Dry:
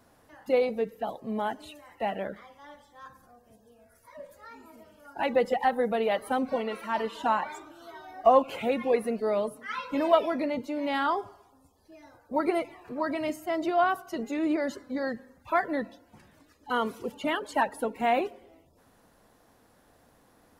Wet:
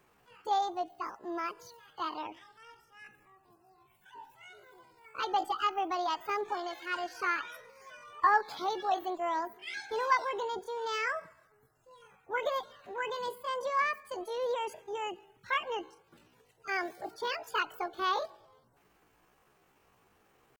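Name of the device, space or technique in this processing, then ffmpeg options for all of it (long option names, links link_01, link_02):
chipmunk voice: -af "asetrate=70004,aresample=44100,atempo=0.629961,volume=-5.5dB"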